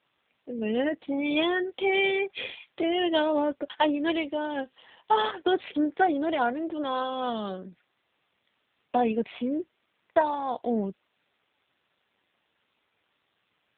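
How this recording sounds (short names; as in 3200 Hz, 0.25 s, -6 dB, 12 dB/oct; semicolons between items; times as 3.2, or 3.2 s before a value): a quantiser's noise floor 10-bit, dither triangular; AMR-NB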